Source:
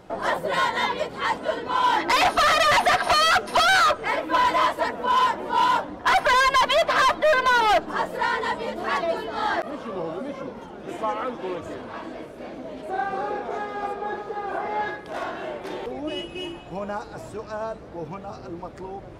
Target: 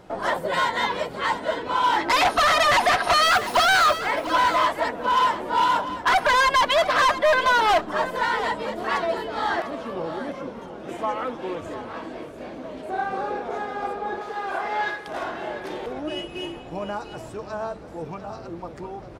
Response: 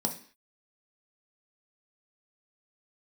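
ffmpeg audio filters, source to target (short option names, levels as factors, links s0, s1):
-filter_complex "[0:a]asettb=1/sr,asplit=3[s0][s1][s2];[s0]atrim=end=3.234[s3];[s1]atrim=start=3.23:end=3.99,asetpts=PTS-STARTPTS,afade=t=in:d=0.004:c=qsin,afade=t=out:st=0.756:d=0.004:c=qsin,acrusher=bits=7:dc=4:mix=0:aa=0.000001[s4];[s2]atrim=start=3.986[s5];[s3][s4]acrossfade=d=0.004:c1=hsin:c2=qsin[s6];[s6][s5]acrossfade=d=0.004:c1=qsin:c2=hsin,asettb=1/sr,asplit=3[s7][s8][s9];[s7]atrim=end=14.214[s10];[s8]atrim=start=14.21:end=15.08,asetpts=PTS-STARTPTS,afade=t=in:d=0.004:c=qsin,afade=t=out:st=0.866:d=0.004:c=qsin,tiltshelf=f=710:g=-6.5[s11];[s9]atrim=start=15.076[s12];[s10][s11]acrossfade=d=0.004:c1=hsin:c2=qsin[s13];[s13][s12]acrossfade=d=0.004:c1=qsin:c2=hsin,aecho=1:1:698:0.237"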